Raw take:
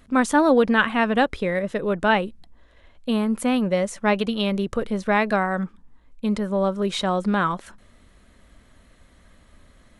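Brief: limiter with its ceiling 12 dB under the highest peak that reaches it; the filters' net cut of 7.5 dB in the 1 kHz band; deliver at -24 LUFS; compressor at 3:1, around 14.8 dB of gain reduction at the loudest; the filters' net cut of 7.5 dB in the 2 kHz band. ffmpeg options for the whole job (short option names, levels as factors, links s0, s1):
-af "equalizer=f=1000:t=o:g=-8.5,equalizer=f=2000:t=o:g=-6.5,acompressor=threshold=0.0178:ratio=3,volume=8.91,alimiter=limit=0.168:level=0:latency=1"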